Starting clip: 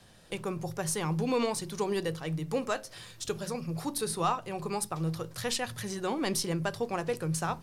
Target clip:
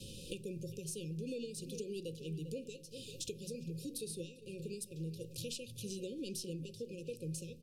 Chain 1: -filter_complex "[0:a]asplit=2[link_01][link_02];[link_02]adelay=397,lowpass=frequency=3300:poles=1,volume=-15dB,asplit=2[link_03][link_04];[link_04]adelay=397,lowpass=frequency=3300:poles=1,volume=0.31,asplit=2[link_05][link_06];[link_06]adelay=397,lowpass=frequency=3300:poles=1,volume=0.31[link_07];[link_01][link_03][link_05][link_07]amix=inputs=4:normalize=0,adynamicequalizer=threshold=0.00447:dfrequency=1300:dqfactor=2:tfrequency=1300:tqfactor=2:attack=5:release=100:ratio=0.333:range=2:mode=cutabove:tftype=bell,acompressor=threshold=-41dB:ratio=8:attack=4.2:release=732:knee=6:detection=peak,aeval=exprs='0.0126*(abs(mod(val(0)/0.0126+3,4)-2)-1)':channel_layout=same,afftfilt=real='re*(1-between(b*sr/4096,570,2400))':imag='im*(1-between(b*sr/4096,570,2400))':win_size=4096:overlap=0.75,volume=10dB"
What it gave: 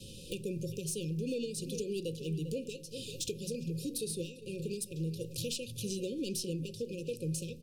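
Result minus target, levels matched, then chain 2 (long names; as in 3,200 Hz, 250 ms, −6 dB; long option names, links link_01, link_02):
downward compressor: peak gain reduction −6 dB
-filter_complex "[0:a]asplit=2[link_01][link_02];[link_02]adelay=397,lowpass=frequency=3300:poles=1,volume=-15dB,asplit=2[link_03][link_04];[link_04]adelay=397,lowpass=frequency=3300:poles=1,volume=0.31,asplit=2[link_05][link_06];[link_06]adelay=397,lowpass=frequency=3300:poles=1,volume=0.31[link_07];[link_01][link_03][link_05][link_07]amix=inputs=4:normalize=0,adynamicequalizer=threshold=0.00447:dfrequency=1300:dqfactor=2:tfrequency=1300:tqfactor=2:attack=5:release=100:ratio=0.333:range=2:mode=cutabove:tftype=bell,acompressor=threshold=-48dB:ratio=8:attack=4.2:release=732:knee=6:detection=peak,aeval=exprs='0.0126*(abs(mod(val(0)/0.0126+3,4)-2)-1)':channel_layout=same,afftfilt=real='re*(1-between(b*sr/4096,570,2400))':imag='im*(1-between(b*sr/4096,570,2400))':win_size=4096:overlap=0.75,volume=10dB"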